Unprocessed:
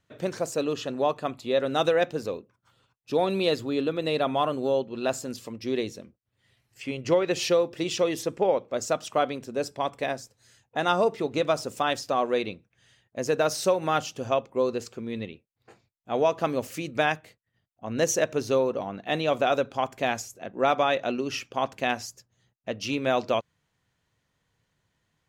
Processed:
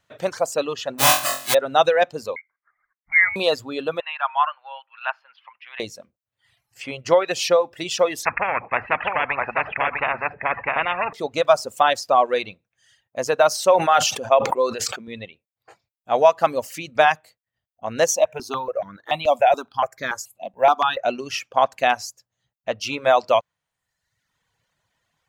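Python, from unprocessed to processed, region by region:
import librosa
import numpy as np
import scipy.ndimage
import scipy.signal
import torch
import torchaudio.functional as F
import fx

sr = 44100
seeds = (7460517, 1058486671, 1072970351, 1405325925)

y = fx.envelope_flatten(x, sr, power=0.1, at=(0.98, 1.53), fade=0.02)
y = fx.notch_comb(y, sr, f0_hz=460.0, at=(0.98, 1.53), fade=0.02)
y = fx.room_flutter(y, sr, wall_m=3.9, rt60_s=0.96, at=(0.98, 1.53), fade=0.02)
y = fx.chain(y, sr, fx.highpass(hz=470.0, slope=24),
    fx.tilt_eq(slope=-3.5),
    fx.freq_invert(carrier_hz=2600), at=(2.36, 3.36))
y = fx.chain(y, sr, fx.ellip_bandpass(low_hz=890.0, high_hz=2900.0, order=3, stop_db=50),
    fx.peak_eq(hz=1500.0, db=5.0, octaves=0.29), at=(4.0, 5.8))
y = fx.chain(y, sr, fx.cheby_ripple(hz=2600.0, ripple_db=6),
    fx.echo_single(ms=652, db=-7.0),
    fx.spectral_comp(ratio=10.0), at=(8.25, 11.13))
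y = fx.chain(y, sr, fx.highpass(hz=180.0, slope=6),
    fx.sustainer(db_per_s=36.0), at=(13.53, 15.08))
y = fx.chain(y, sr, fx.quant_float(bits=6),
    fx.phaser_held(hz=7.0, low_hz=410.0, high_hz=2800.0), at=(18.11, 21.04))
y = fx.low_shelf_res(y, sr, hz=480.0, db=-6.5, q=1.5)
y = fx.dereverb_blind(y, sr, rt60_s=0.98)
y = fx.dynamic_eq(y, sr, hz=900.0, q=0.91, threshold_db=-37.0, ratio=4.0, max_db=4)
y = F.gain(torch.from_numpy(y), 5.5).numpy()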